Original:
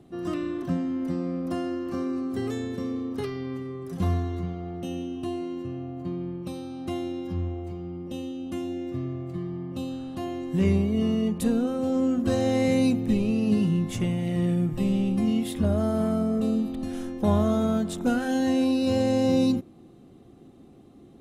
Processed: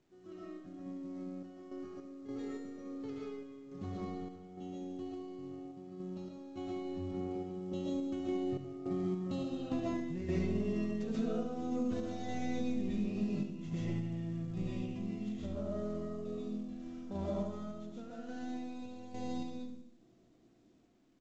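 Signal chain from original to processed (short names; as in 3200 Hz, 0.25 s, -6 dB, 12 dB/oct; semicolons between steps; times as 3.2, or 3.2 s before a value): tracing distortion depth 0.2 ms; Doppler pass-by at 9.49, 16 m/s, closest 2 m; bell 370 Hz +3.5 dB 1.5 oct; digital reverb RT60 0.43 s, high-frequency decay 0.4×, pre-delay 90 ms, DRR -3.5 dB; compressor 4:1, threshold -49 dBFS, peak gain reduction 20 dB; random-step tremolo, depth 70%; feedback echo 72 ms, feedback 48%, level -10 dB; gain +16.5 dB; µ-law 128 kbps 16000 Hz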